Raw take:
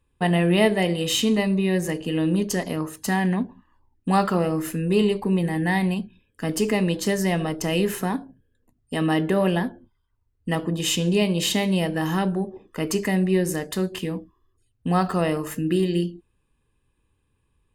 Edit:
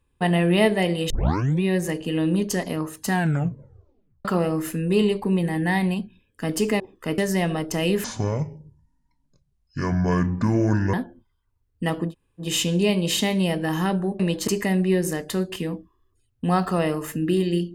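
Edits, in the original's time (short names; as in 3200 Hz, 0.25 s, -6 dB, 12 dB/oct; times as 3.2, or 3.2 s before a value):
1.1 tape start 0.53 s
3.12 tape stop 1.13 s
6.8–7.08 swap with 12.52–12.9
7.94–9.59 speed 57%
10.75 insert room tone 0.33 s, crossfade 0.10 s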